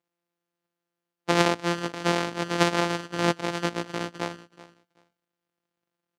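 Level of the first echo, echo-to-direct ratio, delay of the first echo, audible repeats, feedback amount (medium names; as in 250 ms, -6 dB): -18.0 dB, -18.0 dB, 378 ms, 2, 18%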